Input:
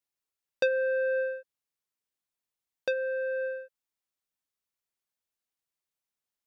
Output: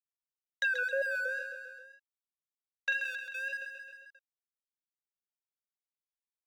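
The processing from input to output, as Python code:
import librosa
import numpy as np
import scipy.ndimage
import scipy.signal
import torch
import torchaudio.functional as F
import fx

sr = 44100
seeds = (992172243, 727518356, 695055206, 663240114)

y = fx.spec_dropout(x, sr, seeds[0], share_pct=34)
y = fx.low_shelf(y, sr, hz=340.0, db=-9.5)
y = np.sign(y) * np.maximum(np.abs(y) - 10.0 ** (-52.5 / 20.0), 0.0)
y = fx.wow_flutter(y, sr, seeds[1], rate_hz=2.1, depth_cents=86.0)
y = fx.filter_lfo_highpass(y, sr, shape='sine', hz=0.7, low_hz=670.0, high_hz=3200.0, q=3.2)
y = fx.doubler(y, sr, ms=43.0, db=-5, at=(1.36, 2.98), fade=0.02)
y = fx.echo_feedback(y, sr, ms=133, feedback_pct=42, wet_db=-13.5)
y = fx.env_flatten(y, sr, amount_pct=50)
y = F.gain(torch.from_numpy(y), -2.5).numpy()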